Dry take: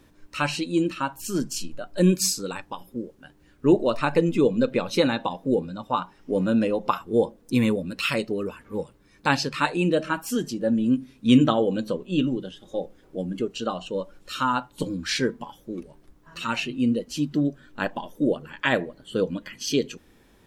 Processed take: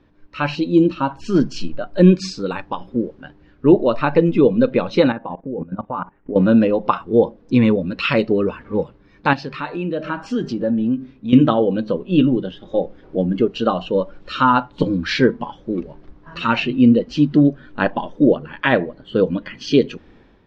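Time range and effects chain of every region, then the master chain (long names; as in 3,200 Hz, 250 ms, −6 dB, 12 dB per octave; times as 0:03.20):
0:00.55–0:01.11: low-pass filter 8,300 Hz 24 dB per octave + parametric band 1,900 Hz −12.5 dB 0.89 octaves + hum removal 218.7 Hz, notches 19
0:05.12–0:06.36: low-pass filter 2,200 Hz 24 dB per octave + output level in coarse steps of 17 dB
0:09.33–0:11.33: hum removal 196.8 Hz, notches 12 + downward compressor 2 to 1, threshold −34 dBFS + one half of a high-frequency compander decoder only
whole clip: low-pass filter 4,900 Hz 24 dB per octave; high-shelf EQ 3,000 Hz −10 dB; automatic gain control gain up to 12 dB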